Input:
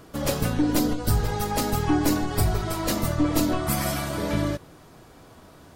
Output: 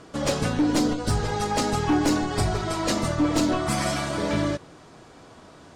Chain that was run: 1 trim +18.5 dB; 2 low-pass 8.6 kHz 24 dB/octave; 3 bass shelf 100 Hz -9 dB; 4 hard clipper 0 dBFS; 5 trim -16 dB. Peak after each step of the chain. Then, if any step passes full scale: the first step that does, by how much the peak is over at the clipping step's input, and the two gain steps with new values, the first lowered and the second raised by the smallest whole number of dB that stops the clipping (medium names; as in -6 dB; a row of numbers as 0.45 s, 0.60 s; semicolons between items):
+5.5 dBFS, +6.0 dBFS, +6.0 dBFS, 0.0 dBFS, -16.0 dBFS; step 1, 6.0 dB; step 1 +12.5 dB, step 5 -10 dB